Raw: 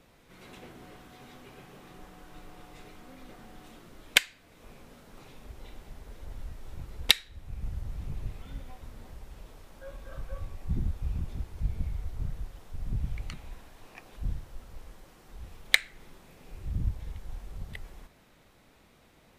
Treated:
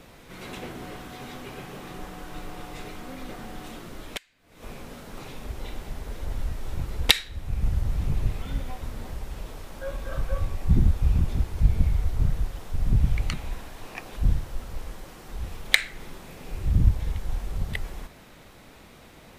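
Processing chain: 4.04–4.63 s: compression 20:1, threshold -45 dBFS, peak gain reduction 31.5 dB; loudness maximiser +12.5 dB; trim -1.5 dB

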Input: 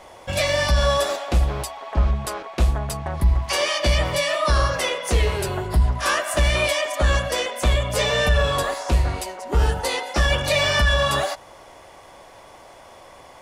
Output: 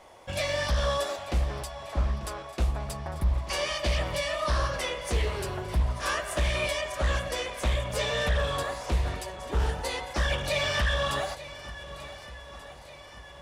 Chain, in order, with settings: shuffle delay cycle 1484 ms, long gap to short 1.5:1, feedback 47%, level -15.5 dB; loudspeaker Doppler distortion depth 0.29 ms; trim -8 dB

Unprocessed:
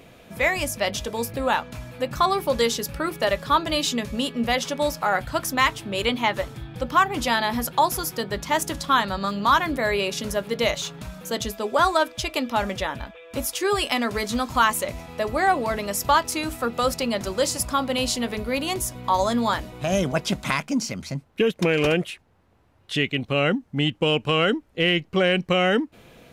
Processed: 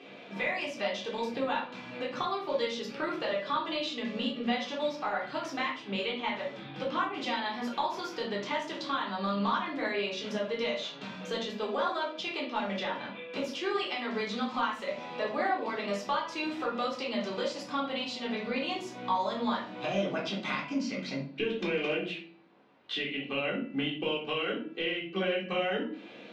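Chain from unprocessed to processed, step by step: high-pass 210 Hz 24 dB/octave; peaking EQ 3.4 kHz +8 dB 1.5 oct; de-hum 332.9 Hz, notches 14; compression 4:1, threshold -30 dBFS, peak gain reduction 16.5 dB; distance through air 180 m; reverberation RT60 0.45 s, pre-delay 3 ms, DRR -5 dB; trim -5.5 dB

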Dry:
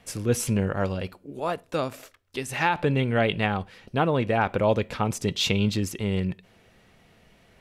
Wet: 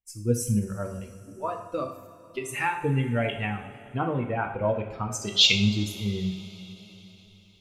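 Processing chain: expander on every frequency bin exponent 2; recorder AGC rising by 9.2 dB/s; 5.07–5.53 s: frequency weighting D; two-slope reverb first 0.57 s, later 4.5 s, from -18 dB, DRR 2.5 dB; endings held to a fixed fall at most 200 dB/s; trim -2 dB

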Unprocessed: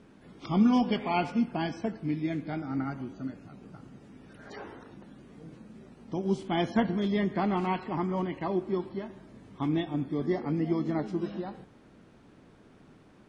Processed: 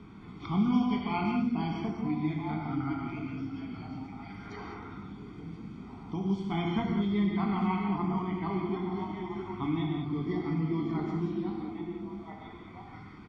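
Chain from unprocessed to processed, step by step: low-pass 4.6 kHz 12 dB/octave; peaking EQ 83 Hz +6.5 dB 0.98 oct; comb 0.9 ms, depth 85%; repeats whose band climbs or falls 661 ms, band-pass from 280 Hz, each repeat 1.4 oct, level -5 dB; gated-style reverb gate 230 ms flat, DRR -0.5 dB; three bands compressed up and down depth 40%; trim -7.5 dB

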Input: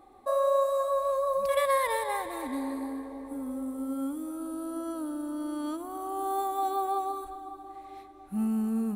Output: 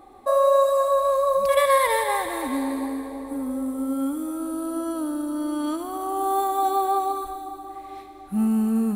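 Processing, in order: feedback echo behind a high-pass 74 ms, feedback 79%, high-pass 1.6 kHz, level -9 dB; trim +7 dB

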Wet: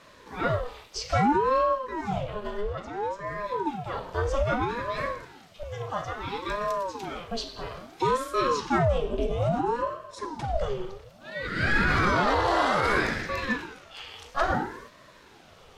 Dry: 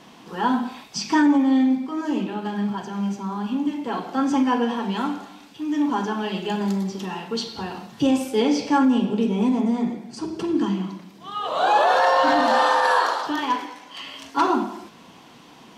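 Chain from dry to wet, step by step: 2.61–3.27 s: treble shelf 7.6 kHz -11.5 dB; 5.63–6.28 s: elliptic high-pass 330 Hz; ring modulator with a swept carrier 510 Hz, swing 65%, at 0.6 Hz; trim -2.5 dB

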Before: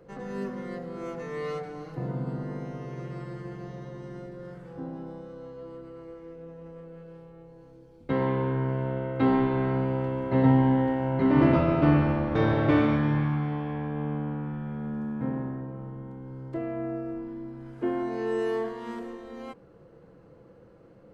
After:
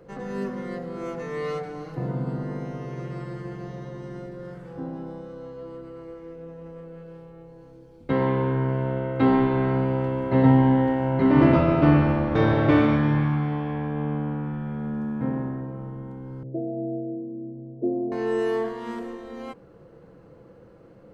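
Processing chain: 16.43–18.12 s: Chebyshev band-pass 120–650 Hz, order 4; trim +3.5 dB

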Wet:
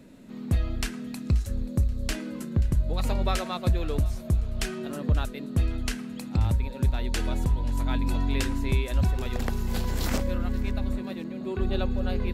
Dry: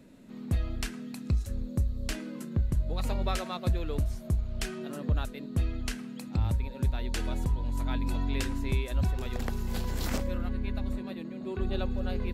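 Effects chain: thinning echo 531 ms, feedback 39%, level -19.5 dB; trim +4 dB

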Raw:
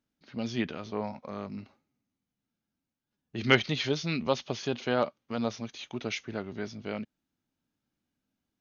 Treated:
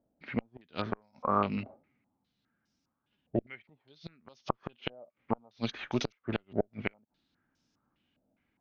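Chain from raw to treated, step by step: inverted gate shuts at -24 dBFS, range -38 dB; Chebyshev shaper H 4 -20 dB, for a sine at -18.5 dBFS; step-sequenced low-pass 4.9 Hz 640–5500 Hz; trim +5.5 dB

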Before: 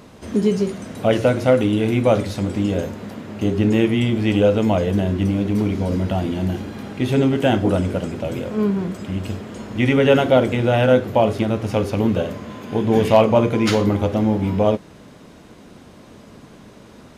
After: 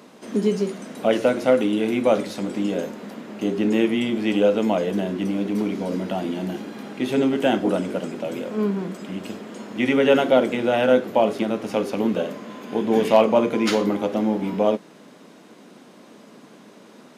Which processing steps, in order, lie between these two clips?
high-pass 190 Hz 24 dB/octave; trim -2 dB

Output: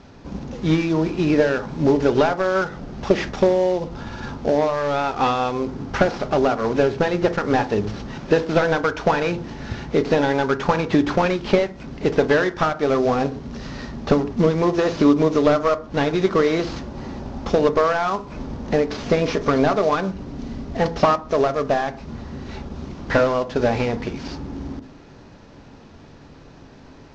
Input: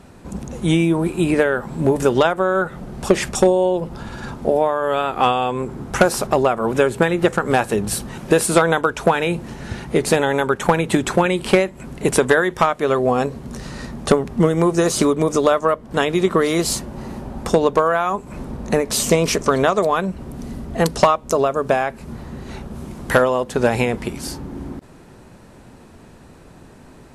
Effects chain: CVSD coder 32 kbps; on a send: reverberation, pre-delay 4 ms, DRR 10.5 dB; on the sum: trim -1 dB

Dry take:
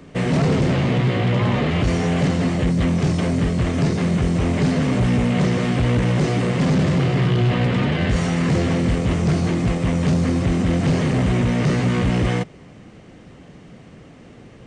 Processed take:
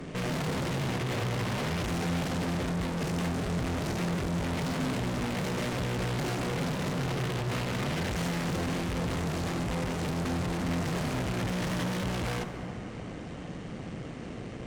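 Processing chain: 11.39–12.04 s: rippled EQ curve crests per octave 1.2, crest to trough 14 dB; valve stage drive 37 dB, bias 0.65; plate-style reverb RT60 4.1 s, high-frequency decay 0.3×, DRR 7.5 dB; trim +6 dB

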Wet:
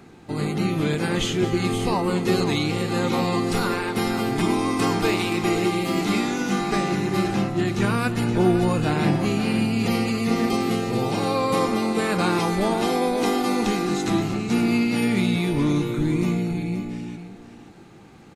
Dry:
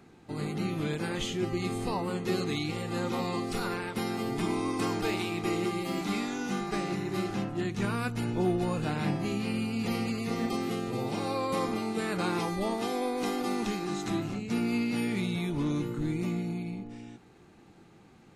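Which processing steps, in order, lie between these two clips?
multi-tap echo 219/524 ms -16/-10.5 dB; trim +8.5 dB

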